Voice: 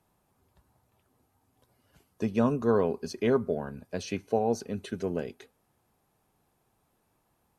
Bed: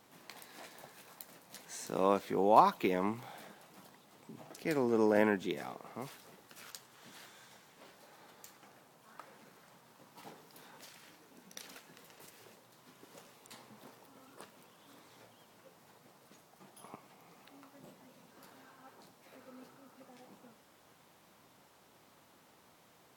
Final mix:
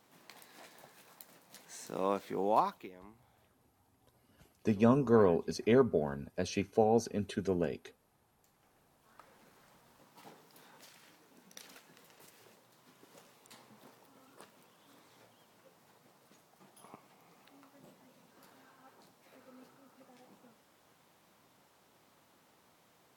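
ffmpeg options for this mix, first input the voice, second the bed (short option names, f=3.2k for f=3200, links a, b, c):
-filter_complex "[0:a]adelay=2450,volume=-1dB[a];[1:a]volume=15dB,afade=t=out:st=2.5:d=0.41:silence=0.125893,afade=t=in:st=8.37:d=1.26:silence=0.11885[b];[a][b]amix=inputs=2:normalize=0"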